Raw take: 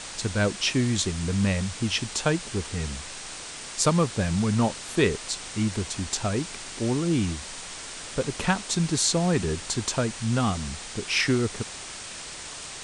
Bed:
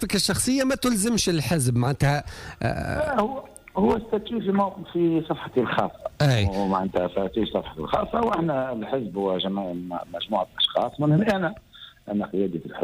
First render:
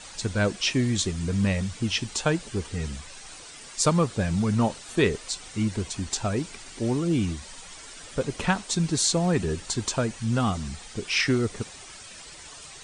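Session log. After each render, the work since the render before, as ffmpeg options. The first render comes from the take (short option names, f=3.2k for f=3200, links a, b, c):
-af "afftdn=nr=10:nf=-39"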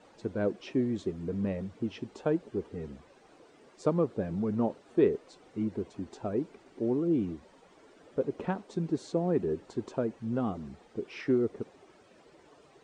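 -af "bandpass=f=380:t=q:w=1.4:csg=0"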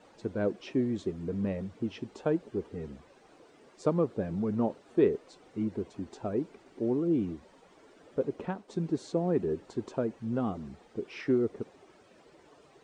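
-filter_complex "[0:a]asplit=2[a][b];[a]atrim=end=8.68,asetpts=PTS-STARTPTS,afade=t=out:st=8.28:d=0.4:silence=0.473151[c];[b]atrim=start=8.68,asetpts=PTS-STARTPTS,afade=t=in:d=0.004:c=hsin:silence=0.473151[d];[c][d]concat=n=2:v=0:a=1"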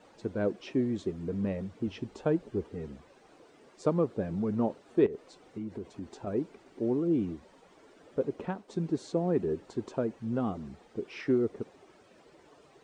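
-filter_complex "[0:a]asettb=1/sr,asplit=3[a][b][c];[a]atrim=end=1.874[d];[b]atrim=start=1.87:end=2.65,asetpts=PTS-STARTPTS,afade=t=in:d=0.004:c=qsin,afade=t=out:st=0.776:d=0.004:c=qsin,lowshelf=f=86:g=11[e];[c]atrim=start=2.646[f];[d][e]acrossfade=d=0.004:c1=hsin:c2=qsin[g];[g][f]acrossfade=d=0.004:c1=qsin:c2=hsin,asettb=1/sr,asplit=3[h][i][j];[h]atrim=end=5.064[k];[i]atrim=start=5.06:end=6.27,asetpts=PTS-STARTPTS,afade=t=in:d=0.004:c=qsin,afade=t=out:st=1.206:d=0.004:c=qsin,acompressor=threshold=-34dB:ratio=6:attack=3.2:release=140:knee=1:detection=peak[l];[j]atrim=start=6.266[m];[k][l]acrossfade=d=0.004:c1=hsin:c2=qsin[n];[n][m]acrossfade=d=0.004:c1=qsin:c2=hsin"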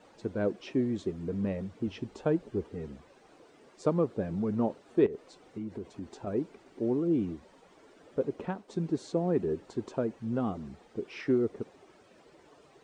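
-af anull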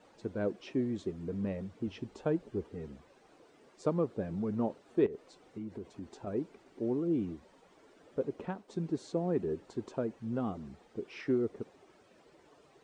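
-af "volume=-3.5dB"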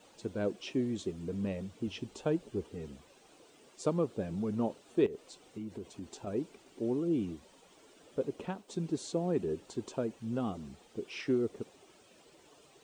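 -af "aexciter=amount=2:drive=7:freq=2.6k"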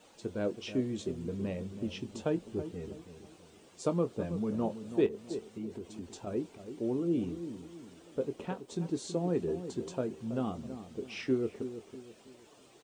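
-filter_complex "[0:a]asplit=2[a][b];[b]adelay=23,volume=-11.5dB[c];[a][c]amix=inputs=2:normalize=0,asplit=2[d][e];[e]adelay=326,lowpass=f=870:p=1,volume=-10dB,asplit=2[f][g];[g]adelay=326,lowpass=f=870:p=1,volume=0.39,asplit=2[h][i];[i]adelay=326,lowpass=f=870:p=1,volume=0.39,asplit=2[j][k];[k]adelay=326,lowpass=f=870:p=1,volume=0.39[l];[d][f][h][j][l]amix=inputs=5:normalize=0"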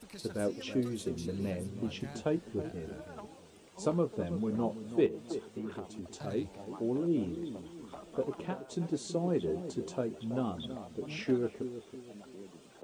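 -filter_complex "[1:a]volume=-25.5dB[a];[0:a][a]amix=inputs=2:normalize=0"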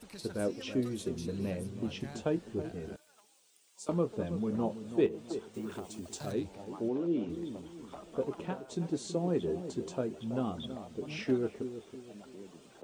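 -filter_complex "[0:a]asettb=1/sr,asplit=3[a][b][c];[a]atrim=end=2.964[d];[b]atrim=start=2.96:end=3.89,asetpts=PTS-STARTPTS,afade=t=in:d=0.004:c=qsin,afade=t=out:st=0.926:d=0.004:c=qsin,aderivative[e];[c]atrim=start=3.886[f];[d][e]acrossfade=d=0.004:c1=hsin:c2=qsin[g];[g][f]acrossfade=d=0.004:c1=qsin:c2=hsin,asettb=1/sr,asplit=3[h][i][j];[h]atrim=end=5.544[k];[i]atrim=start=5.54:end=6.32,asetpts=PTS-STARTPTS,afade=t=in:d=0.004:c=qsin,afade=t=out:st=0.776:d=0.004:c=qsin,aemphasis=mode=production:type=50kf[l];[j]atrim=start=6.316[m];[k][l]acrossfade=d=0.004:c1=hsin:c2=qsin[n];[n][m]acrossfade=d=0.004:c1=qsin:c2=hsin,asplit=3[o][p][q];[o]afade=t=out:st=6.88:d=0.02[r];[p]highpass=200,lowpass=5.1k,afade=t=in:st=6.88:d=0.02,afade=t=out:st=7.28:d=0.02[s];[q]afade=t=in:st=7.28:d=0.02[t];[r][s][t]amix=inputs=3:normalize=0"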